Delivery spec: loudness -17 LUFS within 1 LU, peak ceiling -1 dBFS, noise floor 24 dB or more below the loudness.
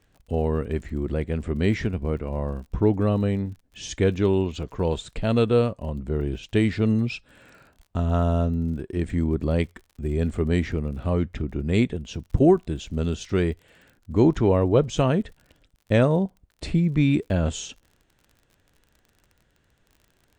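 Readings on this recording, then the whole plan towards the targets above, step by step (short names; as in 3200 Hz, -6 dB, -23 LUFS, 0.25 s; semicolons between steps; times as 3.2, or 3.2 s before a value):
ticks 39/s; loudness -24.5 LUFS; peak -6.0 dBFS; loudness target -17.0 LUFS
-> de-click; gain +7.5 dB; limiter -1 dBFS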